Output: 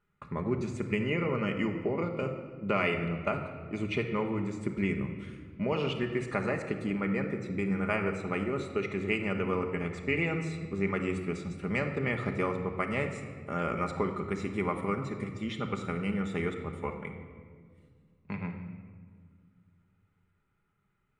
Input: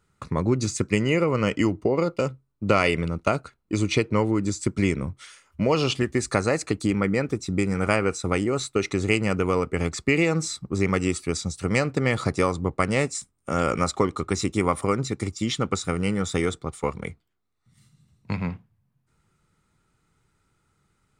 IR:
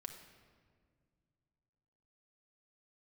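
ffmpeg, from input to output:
-filter_complex "[0:a]highshelf=f=3.6k:t=q:w=1.5:g=-11.5,bandreject=f=50:t=h:w=6,bandreject=f=100:t=h:w=6[a];[1:a]atrim=start_sample=2205[b];[a][b]afir=irnorm=-1:irlink=0,volume=-4.5dB"

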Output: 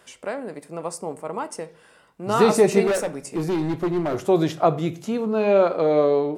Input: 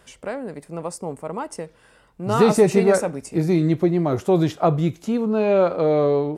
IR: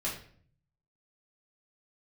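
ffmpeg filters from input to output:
-filter_complex "[0:a]highpass=f=280:p=1,asettb=1/sr,asplit=3[a][b][c];[a]atrim=end=2.874[d];[b]atrim=start=2.87:end=4.26,asetpts=PTS-STARTPTS,afade=t=in:d=0.004:c=qsin,afade=t=out:st=1.386:d=0.004:c=qsin,asoftclip=type=hard:threshold=-21dB[e];[c]atrim=start=4.256[f];[d][e]acrossfade=d=0.004:c1=hsin:c2=qsin[g];[g][f]acrossfade=d=0.004:c1=qsin:c2=hsin,asplit=2[h][i];[1:a]atrim=start_sample=2205[j];[i][j]afir=irnorm=-1:irlink=0,volume=-16dB[k];[h][k]amix=inputs=2:normalize=0"

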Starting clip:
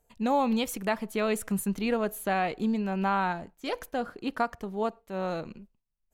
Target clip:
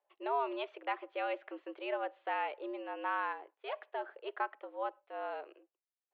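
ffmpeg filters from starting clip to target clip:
-af "highpass=f=270:t=q:w=0.5412,highpass=f=270:t=q:w=1.307,lowpass=f=3.1k:t=q:w=0.5176,lowpass=f=3.1k:t=q:w=0.7071,lowpass=f=3.1k:t=q:w=1.932,afreqshift=130,volume=-7.5dB"

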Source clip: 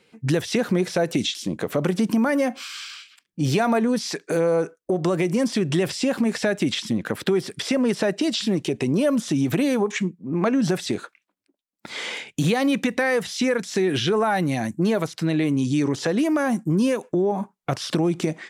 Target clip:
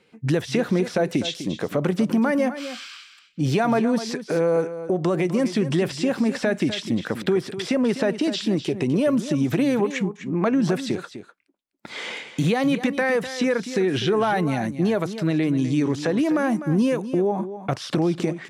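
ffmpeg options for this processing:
-filter_complex "[0:a]highshelf=f=4.4k:g=-7,asplit=2[a][b];[b]aecho=0:1:251:0.251[c];[a][c]amix=inputs=2:normalize=0"

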